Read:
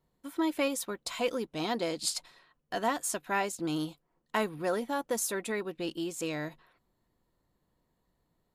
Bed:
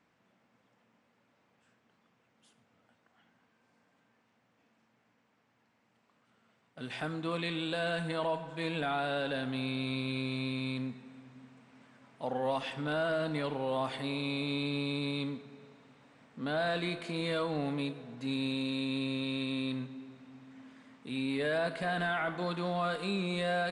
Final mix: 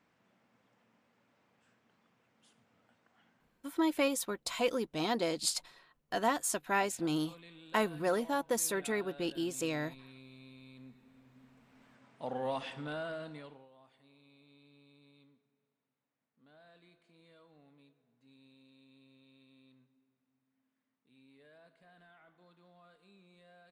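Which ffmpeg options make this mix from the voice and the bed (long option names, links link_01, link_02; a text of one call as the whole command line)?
ffmpeg -i stem1.wav -i stem2.wav -filter_complex "[0:a]adelay=3400,volume=-0.5dB[link_01];[1:a]volume=15dB,afade=type=out:start_time=3.28:duration=0.53:silence=0.11885,afade=type=in:start_time=10.74:duration=1.17:silence=0.158489,afade=type=out:start_time=12.54:duration=1.15:silence=0.0501187[link_02];[link_01][link_02]amix=inputs=2:normalize=0" out.wav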